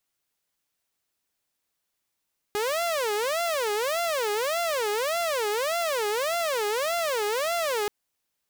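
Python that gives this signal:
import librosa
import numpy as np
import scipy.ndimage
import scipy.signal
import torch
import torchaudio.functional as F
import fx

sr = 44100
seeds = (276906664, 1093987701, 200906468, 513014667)

y = fx.siren(sr, length_s=5.33, kind='wail', low_hz=412.0, high_hz=690.0, per_s=1.7, wave='saw', level_db=-22.0)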